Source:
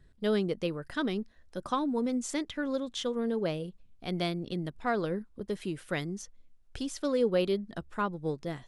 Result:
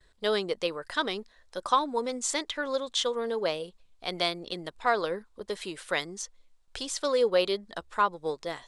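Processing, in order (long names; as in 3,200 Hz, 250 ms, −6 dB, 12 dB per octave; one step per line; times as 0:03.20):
octave-band graphic EQ 125/250/500/1,000/2,000/4,000/8,000 Hz −10/−4/+6/+10/+5/+10/+11 dB
noise gate with hold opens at −56 dBFS
level −3.5 dB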